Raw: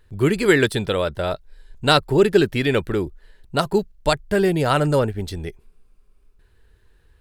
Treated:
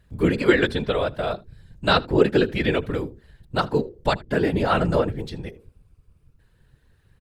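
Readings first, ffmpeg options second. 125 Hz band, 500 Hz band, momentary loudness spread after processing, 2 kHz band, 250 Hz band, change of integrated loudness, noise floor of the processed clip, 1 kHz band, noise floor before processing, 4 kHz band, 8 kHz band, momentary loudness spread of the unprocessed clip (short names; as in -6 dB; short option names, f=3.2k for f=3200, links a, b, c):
-3.0 dB, -3.0 dB, 13 LU, -2.0 dB, -1.5 dB, -2.5 dB, -62 dBFS, -2.0 dB, -57 dBFS, -3.5 dB, under -10 dB, 12 LU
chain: -filter_complex "[0:a]bandreject=f=60:t=h:w=6,bandreject=f=120:t=h:w=6,bandreject=f=180:t=h:w=6,bandreject=f=240:t=h:w=6,bandreject=f=300:t=h:w=6,bandreject=f=360:t=h:w=6,bandreject=f=420:t=h:w=6,acrossover=split=5100[a][b];[b]acompressor=threshold=-56dB:ratio=4[c];[a][c]amix=inputs=2:normalize=0,afftfilt=real='hypot(re,im)*cos(2*PI*random(0))':imag='hypot(re,im)*sin(2*PI*random(1))':win_size=512:overlap=0.75,aecho=1:1:78:0.0668,volume=4dB"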